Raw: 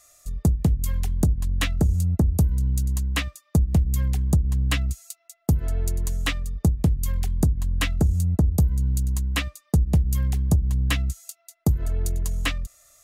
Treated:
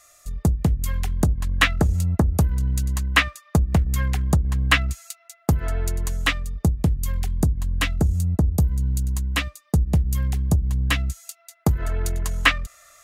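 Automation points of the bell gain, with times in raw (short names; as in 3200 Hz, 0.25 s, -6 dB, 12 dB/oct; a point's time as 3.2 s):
bell 1500 Hz 2.5 oct
0.76 s +6.5 dB
1.71 s +13.5 dB
5.54 s +13.5 dB
6.76 s +3.5 dB
10.78 s +3.5 dB
11.69 s +13.5 dB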